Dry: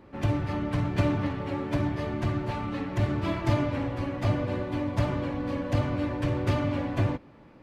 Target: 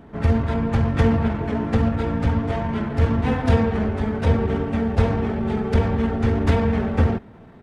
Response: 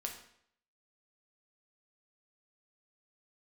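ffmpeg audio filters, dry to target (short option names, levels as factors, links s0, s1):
-af "asetrate=34006,aresample=44100,atempo=1.29684,volume=2.51"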